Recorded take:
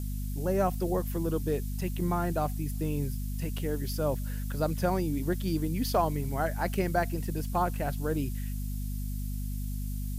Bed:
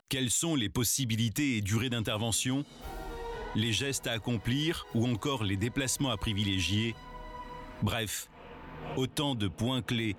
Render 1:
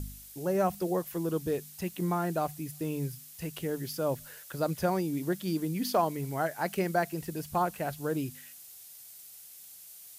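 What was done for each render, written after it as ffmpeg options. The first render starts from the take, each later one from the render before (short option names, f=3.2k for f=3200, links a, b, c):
-af "bandreject=f=50:t=h:w=4,bandreject=f=100:t=h:w=4,bandreject=f=150:t=h:w=4,bandreject=f=200:t=h:w=4,bandreject=f=250:t=h:w=4"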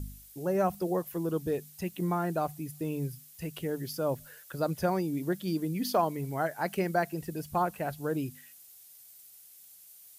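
-af "afftdn=nr=6:nf=-50"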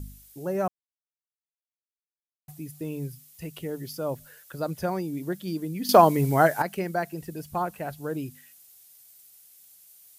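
-filter_complex "[0:a]asettb=1/sr,asplit=3[a][b][c];[a]atrim=end=3.144[d];[b]atrim=start=3.14:end=4.14,asetpts=PTS-STARTPTS,afade=t=in:d=0.004:c=qsin,afade=t=out:st=0.996:d=0.004:c=qsin,bandreject=f=1.6k:w=11[e];[c]atrim=start=4.136[f];[d][e]acrossfade=d=0.004:c1=hsin:c2=qsin[g];[g][f]acrossfade=d=0.004:c1=qsin:c2=hsin,asplit=5[h][i][j][k][l];[h]atrim=end=0.68,asetpts=PTS-STARTPTS,afade=t=out:st=0.676:d=0.004:c=hsin[m];[i]atrim=start=0.68:end=2.48,asetpts=PTS-STARTPTS,volume=0[n];[j]atrim=start=2.48:end=5.892,asetpts=PTS-STARTPTS,afade=t=in:d=0.004:c=hsin[o];[k]atrim=start=5.888:end=6.622,asetpts=PTS-STARTPTS,volume=11.5dB[p];[l]atrim=start=6.618[q];[m][n][o]concat=n=3:v=0:a=1[r];[r][p]acrossfade=d=0.004:c1=hsin:c2=hsin[s];[s][q]acrossfade=d=0.004:c1=hsin:c2=hsin"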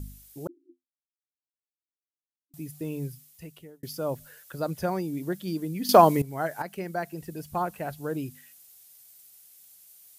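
-filter_complex "[0:a]asettb=1/sr,asplit=3[a][b][c];[a]atrim=end=0.474[d];[b]atrim=start=0.47:end=2.54,asetpts=PTS-STARTPTS,afade=t=in:d=0.004:c=qsin,afade=t=out:st=2.066:d=0.004:c=qsin,asuperpass=centerf=300:order=20:qfactor=3.3[e];[c]atrim=start=2.536[f];[d][e]acrossfade=d=0.004:c1=hsin:c2=qsin[g];[g][f]acrossfade=d=0.004:c1=qsin:c2=hsin,asplit=3[h][i][j];[h]atrim=end=3.83,asetpts=PTS-STARTPTS,afade=t=out:st=3.07:d=0.76[k];[i]atrim=start=3.83:end=6.22,asetpts=PTS-STARTPTS,afade=t=in:d=0.004:c=hsin,afade=t=out:st=2.386:d=0.004:c=hsin:silence=0.133352[l];[j]atrim=start=6.22,asetpts=PTS-STARTPTS,afade=t=in:d=1.74:c=qsin:silence=0.133352[m];[k][l][m]concat=n=3:v=0:a=1"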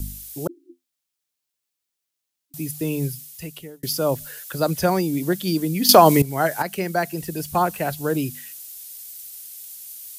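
-filter_complex "[0:a]acrossover=split=280|560|2500[a][b][c][d];[d]acontrast=66[e];[a][b][c][e]amix=inputs=4:normalize=0,alimiter=level_in=8.5dB:limit=-1dB:release=50:level=0:latency=1"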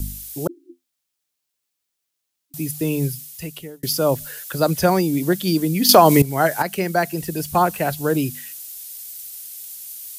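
-af "volume=3dB,alimiter=limit=-1dB:level=0:latency=1"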